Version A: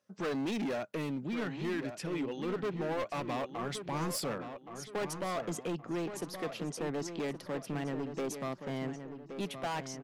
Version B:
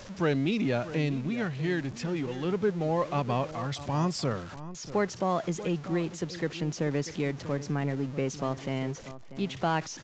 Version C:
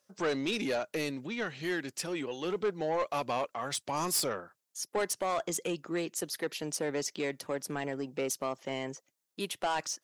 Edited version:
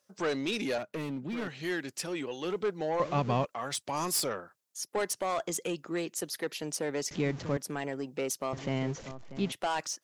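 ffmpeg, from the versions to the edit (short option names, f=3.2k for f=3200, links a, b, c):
-filter_complex "[1:a]asplit=3[a][b][c];[2:a]asplit=5[d][e][f][g][h];[d]atrim=end=0.782[i];[0:a]atrim=start=0.778:end=1.482[j];[e]atrim=start=1.478:end=3.002[k];[a]atrim=start=2.998:end=3.452[l];[f]atrim=start=3.448:end=7.112[m];[b]atrim=start=7.108:end=7.572[n];[g]atrim=start=7.568:end=8.532[o];[c]atrim=start=8.528:end=9.522[p];[h]atrim=start=9.518[q];[i][j]acrossfade=d=0.004:c1=hsin:c2=hsin[r];[r][k]acrossfade=d=0.004:c1=hsin:c2=hsin[s];[s][l]acrossfade=d=0.004:c1=hsin:c2=hsin[t];[t][m]acrossfade=d=0.004:c1=hsin:c2=hsin[u];[u][n]acrossfade=d=0.004:c1=hsin:c2=hsin[v];[v][o]acrossfade=d=0.004:c1=hsin:c2=hsin[w];[w][p]acrossfade=d=0.004:c1=hsin:c2=hsin[x];[x][q]acrossfade=d=0.004:c1=hsin:c2=hsin"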